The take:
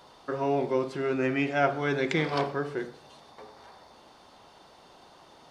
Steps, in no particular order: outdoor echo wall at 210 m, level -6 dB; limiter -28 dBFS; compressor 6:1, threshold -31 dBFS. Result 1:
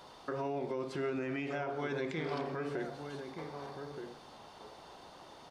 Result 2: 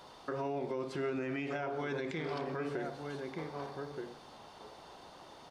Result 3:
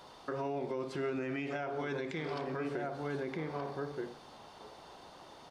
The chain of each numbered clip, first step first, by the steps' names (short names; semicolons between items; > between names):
compressor > limiter > outdoor echo; compressor > outdoor echo > limiter; outdoor echo > compressor > limiter